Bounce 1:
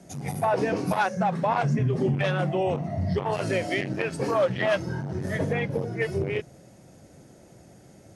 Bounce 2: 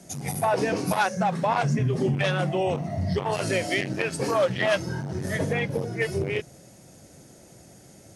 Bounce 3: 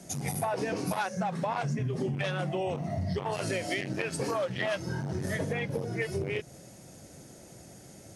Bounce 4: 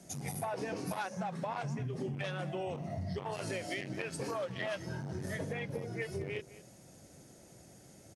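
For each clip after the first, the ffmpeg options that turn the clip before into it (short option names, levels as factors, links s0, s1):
-af "highshelf=f=3500:g=9.5"
-af "acompressor=threshold=0.0355:ratio=4"
-filter_complex "[0:a]asplit=2[s0][s1];[s1]adelay=210,highpass=300,lowpass=3400,asoftclip=type=hard:threshold=0.0473,volume=0.158[s2];[s0][s2]amix=inputs=2:normalize=0,volume=0.473"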